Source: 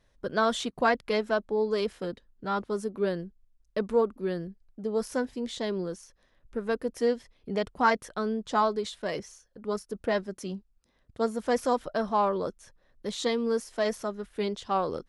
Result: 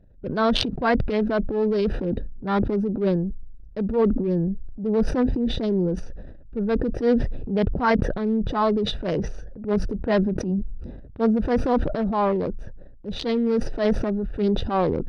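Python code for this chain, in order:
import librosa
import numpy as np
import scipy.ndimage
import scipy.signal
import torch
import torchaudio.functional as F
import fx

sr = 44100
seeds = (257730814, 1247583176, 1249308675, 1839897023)

y = fx.wiener(x, sr, points=41)
y = fx.low_shelf(y, sr, hz=270.0, db=8.0)
y = fx.transient(y, sr, attack_db=-7, sustain_db=7)
y = fx.rider(y, sr, range_db=3, speed_s=0.5)
y = scipy.signal.savgol_filter(y, 15, 4, mode='constant')
y = fx.sustainer(y, sr, db_per_s=40.0)
y = y * 10.0 ** (6.0 / 20.0)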